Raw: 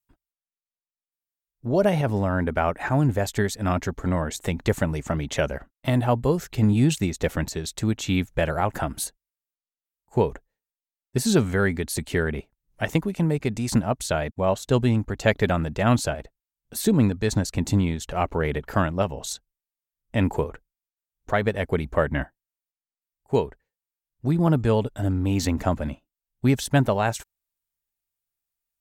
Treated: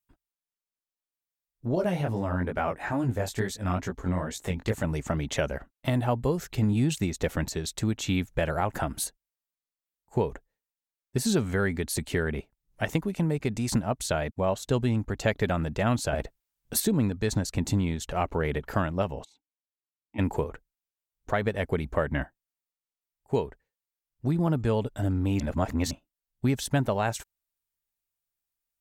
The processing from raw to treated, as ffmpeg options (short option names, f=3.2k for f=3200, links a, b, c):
-filter_complex "[0:a]asettb=1/sr,asplit=3[a][b][c];[a]atrim=end=1.754[d];[b]atrim=start=1.75:end=4.84,asetpts=PTS-STARTPTS,afade=t=in:d=0.004:c=qsin,afade=t=out:st=3.086:d=0.004:c=qsin,flanger=delay=16:depth=6.9:speed=2.3[e];[c]atrim=start=4.836[f];[d][e]acrossfade=d=0.004:c1=hsin:c2=qsin[g];[g][f]acrossfade=d=0.004:c1=qsin:c2=hsin,asplit=3[h][i][j];[h]afade=t=out:st=19.23:d=0.02[k];[i]asplit=3[l][m][n];[l]bandpass=f=300:t=q:w=8,volume=0dB[o];[m]bandpass=f=870:t=q:w=8,volume=-6dB[p];[n]bandpass=f=2.24k:t=q:w=8,volume=-9dB[q];[o][p][q]amix=inputs=3:normalize=0,afade=t=in:st=19.23:d=0.02,afade=t=out:st=20.18:d=0.02[r];[j]afade=t=in:st=20.18:d=0.02[s];[k][r][s]amix=inputs=3:normalize=0,asplit=5[t][u][v][w][x];[t]atrim=end=16.132[y];[u]atrim=start=16.128:end=16.802,asetpts=PTS-STARTPTS,volume=8dB[z];[v]atrim=start=16.798:end=25.402[aa];[w]atrim=start=25.398:end=25.912,asetpts=PTS-STARTPTS,areverse[ab];[x]atrim=start=25.908[ac];[y][z]acrossfade=d=0.004:c1=hsin:c2=hsin[ad];[ad][aa]acrossfade=d=0.004:c1=hsin:c2=hsin[ae];[ae][ab]acrossfade=d=0.004:c1=hsin:c2=hsin[af];[af][ac]acrossfade=d=0.004:c1=hsin:c2=hsin,acompressor=threshold=-22dB:ratio=2,volume=-1.5dB"